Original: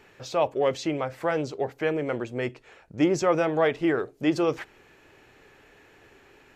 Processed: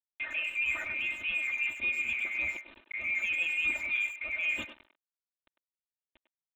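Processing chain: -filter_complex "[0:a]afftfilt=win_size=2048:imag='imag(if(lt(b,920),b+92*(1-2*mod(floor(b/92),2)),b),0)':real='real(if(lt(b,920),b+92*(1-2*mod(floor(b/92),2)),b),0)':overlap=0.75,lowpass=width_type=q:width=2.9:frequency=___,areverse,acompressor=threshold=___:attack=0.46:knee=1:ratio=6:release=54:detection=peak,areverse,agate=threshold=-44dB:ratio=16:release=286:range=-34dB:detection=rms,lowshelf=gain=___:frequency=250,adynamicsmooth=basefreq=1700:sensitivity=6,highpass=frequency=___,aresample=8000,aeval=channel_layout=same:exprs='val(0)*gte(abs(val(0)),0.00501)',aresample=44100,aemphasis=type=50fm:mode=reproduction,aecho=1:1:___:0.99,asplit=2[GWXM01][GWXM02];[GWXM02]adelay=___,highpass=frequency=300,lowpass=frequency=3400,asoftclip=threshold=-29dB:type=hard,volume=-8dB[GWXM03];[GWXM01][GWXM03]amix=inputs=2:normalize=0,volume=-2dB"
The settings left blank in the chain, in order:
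2600, -28dB, 5, 64, 3.3, 100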